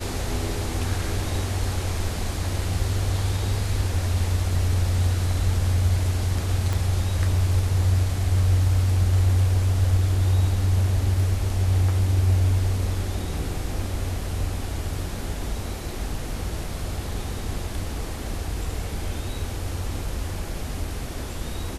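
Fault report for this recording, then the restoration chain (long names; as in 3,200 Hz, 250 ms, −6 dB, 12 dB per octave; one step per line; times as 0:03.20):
0:06.73: click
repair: click removal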